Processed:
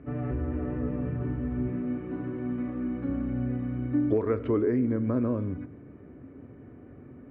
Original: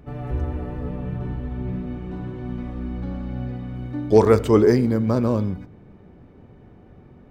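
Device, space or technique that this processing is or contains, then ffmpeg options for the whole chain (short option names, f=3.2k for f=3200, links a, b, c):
bass amplifier: -filter_complex "[0:a]asettb=1/sr,asplit=3[a][b][c];[a]atrim=end=1.684[d];[b]atrim=start=1.68:end=3.09,asetpts=PTS-STARTPTS,afade=t=in:d=0.004:c=qsin,afade=t=out:st=1.406:d=0.004:c=qsin,highpass=f=180:p=1[e];[c]atrim=start=3.086[f];[d][e]acrossfade=d=0.004:c1=hsin:c2=qsin[g];[g][f]acrossfade=d=0.004:c1=qsin:c2=hsin,acompressor=threshold=-24dB:ratio=5,highpass=77,equalizer=f=190:t=q:w=4:g=-8,equalizer=f=270:t=q:w=4:g=9,equalizer=f=840:t=q:w=4:g=-10,lowpass=f=2.3k:w=0.5412,lowpass=f=2.3k:w=1.3066"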